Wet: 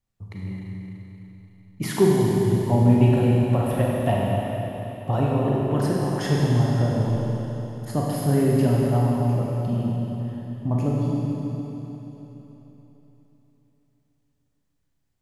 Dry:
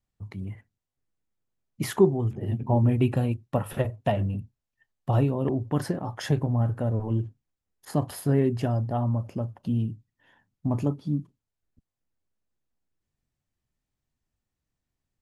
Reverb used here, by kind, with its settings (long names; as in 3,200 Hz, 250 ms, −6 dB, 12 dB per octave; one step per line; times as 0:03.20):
four-comb reverb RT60 3.7 s, combs from 33 ms, DRR −4 dB